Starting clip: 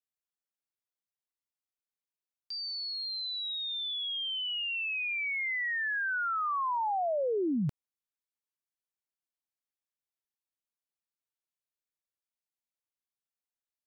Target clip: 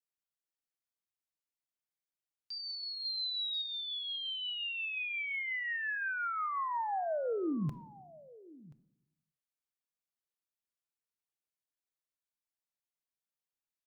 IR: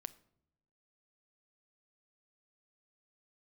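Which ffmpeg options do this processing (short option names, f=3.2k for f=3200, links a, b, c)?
-filter_complex "[0:a]asettb=1/sr,asplit=3[a][b][c];[a]atrim=end=3.054[d];[b]atrim=start=3.05:end=3.62,asetpts=PTS-STARTPTS,afade=t=in:d=0.004:c=qsin,afade=t=out:st=0.566:d=0.004:c=qsin,highshelf=f=2.8k:g=6[e];[c]atrim=start=3.616[f];[d][e]acrossfade=d=0.004:c1=hsin:c2=qsin[g];[g][f]acrossfade=d=0.004:c1=qsin:c2=hsin,aecho=1:1:1030:0.0891[h];[1:a]atrim=start_sample=2205[i];[h][i]afir=irnorm=-1:irlink=0"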